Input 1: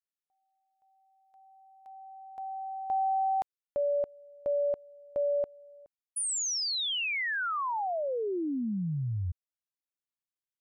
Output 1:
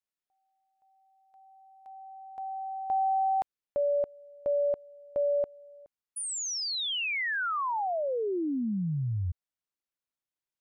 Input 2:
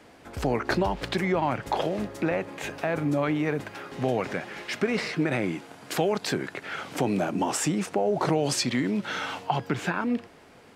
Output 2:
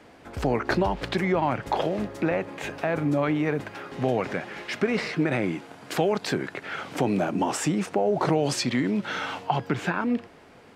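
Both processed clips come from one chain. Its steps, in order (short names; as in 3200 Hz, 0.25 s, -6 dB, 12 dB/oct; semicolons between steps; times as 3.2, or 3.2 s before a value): high shelf 5100 Hz -6 dB; gain +1.5 dB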